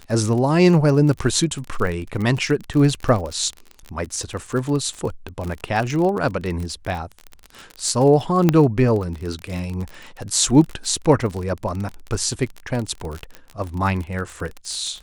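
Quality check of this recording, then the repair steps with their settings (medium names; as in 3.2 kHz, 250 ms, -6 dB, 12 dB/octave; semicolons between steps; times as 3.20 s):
crackle 35 per s -25 dBFS
8.49 s: pop -3 dBFS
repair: de-click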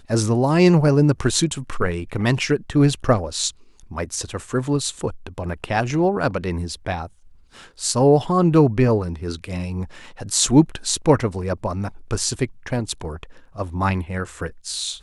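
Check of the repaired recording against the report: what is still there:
nothing left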